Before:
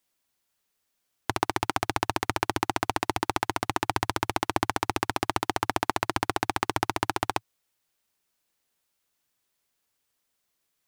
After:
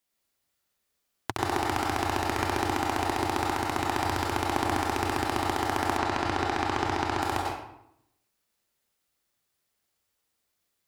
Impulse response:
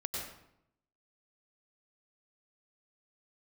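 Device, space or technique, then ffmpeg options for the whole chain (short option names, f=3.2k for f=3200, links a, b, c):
bathroom: -filter_complex "[1:a]atrim=start_sample=2205[a];[0:a][a]afir=irnorm=-1:irlink=0,asettb=1/sr,asplit=3[b][c][d];[b]atrim=end=5.974[e];[c]atrim=start=5.97:end=7.22,asetpts=PTS-STARTPTS,afade=t=in:d=0.004:c=qsin,afade=t=out:st=1.246:d=0.004:c=qsin,acrossover=split=7300[f][g];[g]acompressor=threshold=-59dB:ratio=4:attack=1:release=60[h];[f][h]amix=inputs=2:normalize=0[i];[d]atrim=start=7.216[j];[e][i]acrossfade=d=0.004:c1=hsin:c2=qsin[k];[k][j]acrossfade=d=0.004:c1=qsin:c2=hsin,volume=-2dB"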